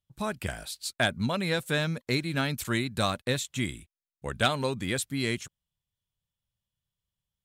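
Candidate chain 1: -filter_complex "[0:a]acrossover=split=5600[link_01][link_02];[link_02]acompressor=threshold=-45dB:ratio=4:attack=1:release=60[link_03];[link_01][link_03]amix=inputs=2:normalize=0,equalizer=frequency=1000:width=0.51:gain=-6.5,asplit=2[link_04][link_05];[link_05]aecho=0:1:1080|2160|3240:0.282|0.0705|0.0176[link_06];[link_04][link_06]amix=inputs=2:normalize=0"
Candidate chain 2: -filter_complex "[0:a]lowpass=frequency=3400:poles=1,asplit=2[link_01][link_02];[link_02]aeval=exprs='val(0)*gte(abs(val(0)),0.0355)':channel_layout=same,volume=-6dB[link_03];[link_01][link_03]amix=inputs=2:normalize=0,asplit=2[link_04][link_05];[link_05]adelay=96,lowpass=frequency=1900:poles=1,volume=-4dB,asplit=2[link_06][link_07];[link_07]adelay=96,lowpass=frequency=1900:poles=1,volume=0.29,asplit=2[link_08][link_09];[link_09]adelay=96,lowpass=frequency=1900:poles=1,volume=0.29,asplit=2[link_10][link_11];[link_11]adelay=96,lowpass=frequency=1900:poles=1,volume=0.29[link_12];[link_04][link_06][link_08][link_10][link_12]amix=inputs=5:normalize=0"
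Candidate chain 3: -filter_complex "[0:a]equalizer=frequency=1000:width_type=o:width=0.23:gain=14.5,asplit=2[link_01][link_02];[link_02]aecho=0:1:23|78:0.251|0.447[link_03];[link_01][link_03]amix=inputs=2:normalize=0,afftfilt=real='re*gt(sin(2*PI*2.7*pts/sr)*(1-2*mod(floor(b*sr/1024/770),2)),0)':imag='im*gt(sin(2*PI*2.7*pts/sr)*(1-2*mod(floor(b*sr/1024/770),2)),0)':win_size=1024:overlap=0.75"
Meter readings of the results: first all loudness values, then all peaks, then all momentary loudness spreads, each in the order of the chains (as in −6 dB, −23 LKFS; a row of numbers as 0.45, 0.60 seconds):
−33.0, −26.5, −31.0 LKFS; −15.0, −9.5, −13.0 dBFS; 14, 12, 11 LU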